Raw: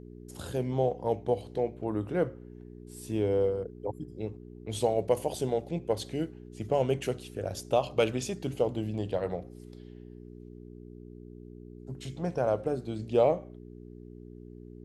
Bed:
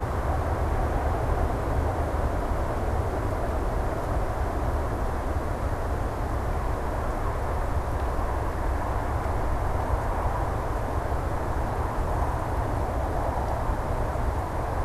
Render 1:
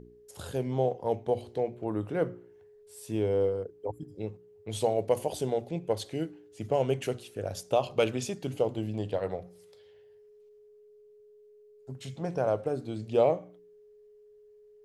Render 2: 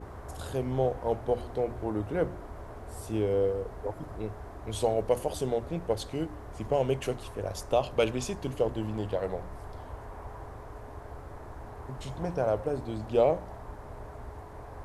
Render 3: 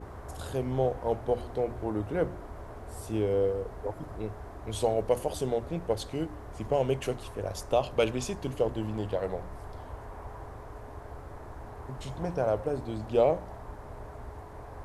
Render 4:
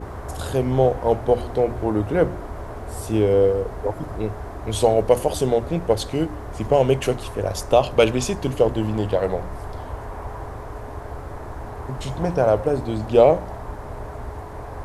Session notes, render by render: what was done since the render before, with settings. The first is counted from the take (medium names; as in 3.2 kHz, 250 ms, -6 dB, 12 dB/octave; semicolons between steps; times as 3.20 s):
de-hum 60 Hz, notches 6
add bed -16 dB
no audible change
trim +10 dB